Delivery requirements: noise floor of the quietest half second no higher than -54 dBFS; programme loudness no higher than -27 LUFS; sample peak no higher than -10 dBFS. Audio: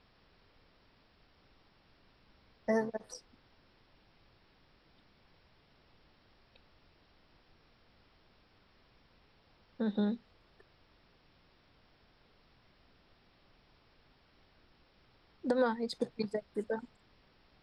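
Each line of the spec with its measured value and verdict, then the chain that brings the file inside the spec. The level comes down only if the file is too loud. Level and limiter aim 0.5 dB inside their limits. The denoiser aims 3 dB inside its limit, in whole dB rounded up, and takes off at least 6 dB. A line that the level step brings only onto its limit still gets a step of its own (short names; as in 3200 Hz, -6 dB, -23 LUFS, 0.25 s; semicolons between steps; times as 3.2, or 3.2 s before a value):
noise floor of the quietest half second -67 dBFS: OK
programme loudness -36.0 LUFS: OK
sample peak -17.5 dBFS: OK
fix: none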